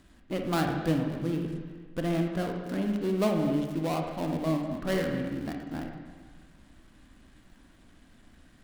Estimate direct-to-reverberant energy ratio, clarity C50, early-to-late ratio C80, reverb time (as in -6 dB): 2.5 dB, 3.5 dB, 5.5 dB, 1.5 s